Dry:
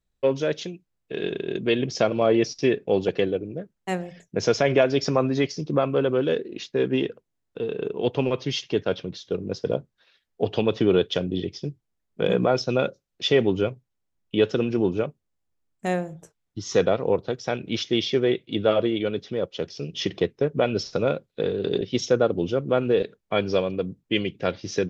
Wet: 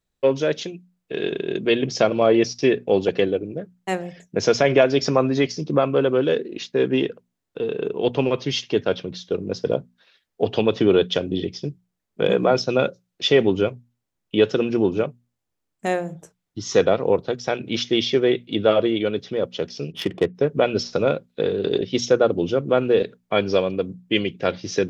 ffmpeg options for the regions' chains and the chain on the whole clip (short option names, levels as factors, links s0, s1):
-filter_complex "[0:a]asettb=1/sr,asplit=3[s0][s1][s2];[s0]atrim=end=19.924[s3];[s1]atrim=start=19.92:end=20.35,asetpts=PTS-STARTPTS,afade=t=in:d=0.004:c=qsin,afade=t=out:st=0.426:d=0.004:c=qsin,bandreject=f=4000:w=14,adynamicsmooth=sensitivity=2.5:basefreq=1400[s4];[s2]atrim=start=20.346[s5];[s3][s4]acrossfade=d=0.004:c1=hsin:c2=qsin[s6];[s6][s5]acrossfade=d=0.004:c1=qsin:c2=hsin,lowshelf=f=63:g=-9.5,bandreject=f=60:t=h:w=6,bandreject=f=120:t=h:w=6,bandreject=f=180:t=h:w=6,bandreject=f=240:t=h:w=6,volume=1.5"